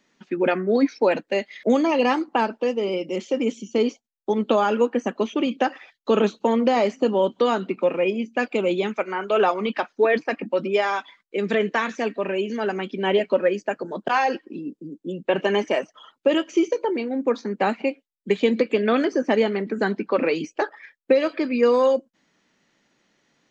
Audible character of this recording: noise floor -73 dBFS; spectral tilt -3.5 dB/oct

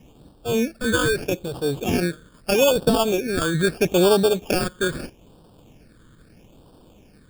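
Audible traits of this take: aliases and images of a low sample rate 2000 Hz, jitter 0%; phasing stages 8, 0.78 Hz, lowest notch 750–2100 Hz

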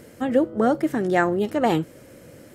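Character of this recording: noise floor -48 dBFS; spectral tilt -3.0 dB/oct

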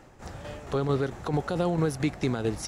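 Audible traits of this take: tremolo saw down 4.5 Hz, depth 50%

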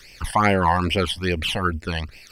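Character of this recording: a quantiser's noise floor 12-bit, dither none; phasing stages 12, 2.4 Hz, lowest notch 390–1300 Hz; Opus

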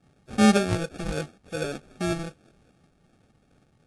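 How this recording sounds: phasing stages 8, 2.6 Hz, lowest notch 450–1300 Hz; aliases and images of a low sample rate 1000 Hz, jitter 0%; AAC

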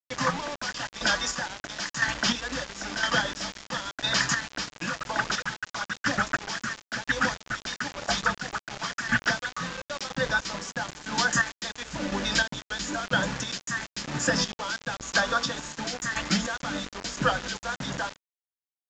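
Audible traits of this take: chopped level 0.99 Hz, depth 60%, duty 30%; a quantiser's noise floor 6-bit, dither none; µ-law

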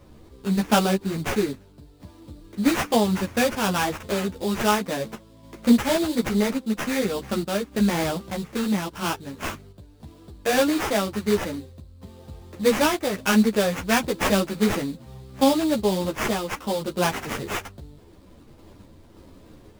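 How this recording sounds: random-step tremolo; aliases and images of a low sample rate 4200 Hz, jitter 20%; a shimmering, thickened sound

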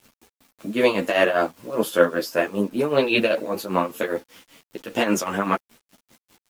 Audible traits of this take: tremolo triangle 5.1 Hz, depth 85%; a quantiser's noise floor 10-bit, dither none; a shimmering, thickened sound

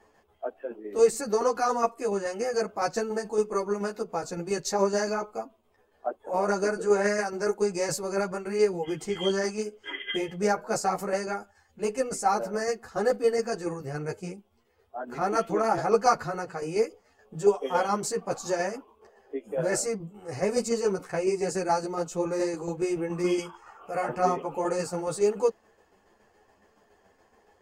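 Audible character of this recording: tremolo saw down 7.1 Hz, depth 50%; a shimmering, thickened sound

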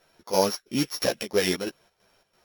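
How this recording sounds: a buzz of ramps at a fixed pitch in blocks of 8 samples; chopped level 3 Hz, depth 65%, duty 65%; a shimmering, thickened sound

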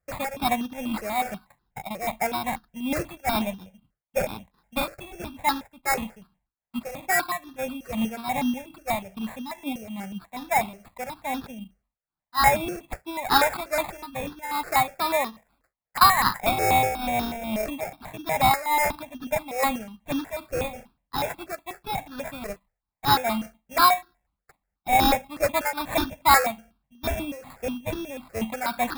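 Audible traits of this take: aliases and images of a low sample rate 3000 Hz, jitter 0%; tremolo triangle 2.4 Hz, depth 75%; notches that jump at a steady rate 8.2 Hz 950–2200 Hz

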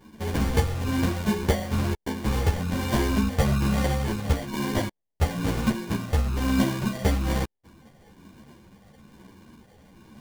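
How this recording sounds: phasing stages 12, 1.1 Hz, lowest notch 340–1900 Hz; aliases and images of a low sample rate 1300 Hz, jitter 0%; a shimmering, thickened sound

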